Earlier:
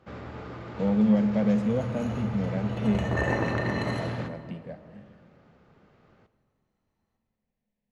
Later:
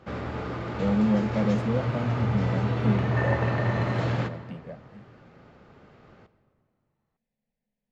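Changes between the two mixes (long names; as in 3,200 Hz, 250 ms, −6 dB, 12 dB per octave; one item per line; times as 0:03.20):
speech: send off
first sound +7.0 dB
second sound: add resonant band-pass 1,100 Hz, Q 0.62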